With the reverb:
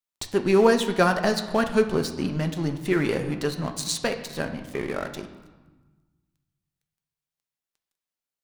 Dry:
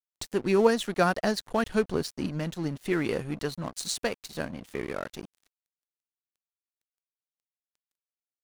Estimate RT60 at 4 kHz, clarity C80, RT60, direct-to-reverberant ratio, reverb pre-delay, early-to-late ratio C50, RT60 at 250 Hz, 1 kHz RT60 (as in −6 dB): 0.95 s, 12.0 dB, 1.3 s, 6.0 dB, 5 ms, 10.0 dB, 1.6 s, 1.4 s